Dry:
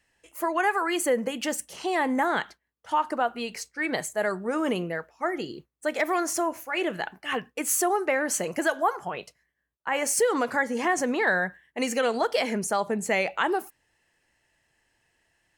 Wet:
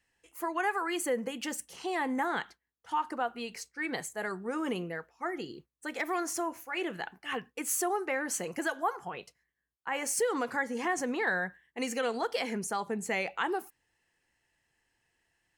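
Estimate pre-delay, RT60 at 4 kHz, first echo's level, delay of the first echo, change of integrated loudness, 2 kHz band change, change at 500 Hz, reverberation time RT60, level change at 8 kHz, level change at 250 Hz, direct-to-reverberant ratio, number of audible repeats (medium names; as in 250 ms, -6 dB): no reverb, no reverb, no echo, no echo, -6.5 dB, -6.0 dB, -7.5 dB, no reverb, -6.0 dB, -6.0 dB, no reverb, no echo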